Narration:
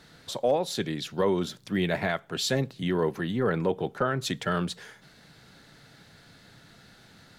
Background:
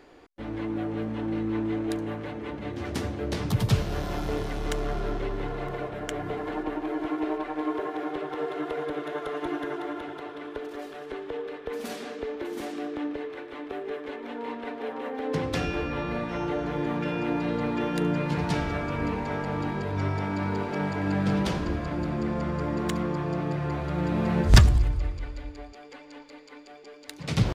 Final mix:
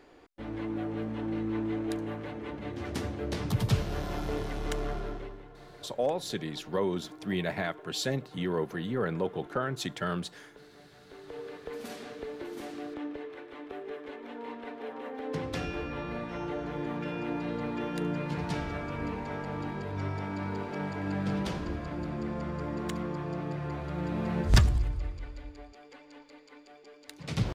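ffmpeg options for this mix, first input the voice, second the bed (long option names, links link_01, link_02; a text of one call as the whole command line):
ffmpeg -i stem1.wav -i stem2.wav -filter_complex "[0:a]adelay=5550,volume=-4.5dB[link_01];[1:a]volume=9dB,afade=type=out:start_time=4.85:duration=0.59:silence=0.177828,afade=type=in:start_time=11.06:duration=0.41:silence=0.237137[link_02];[link_01][link_02]amix=inputs=2:normalize=0" out.wav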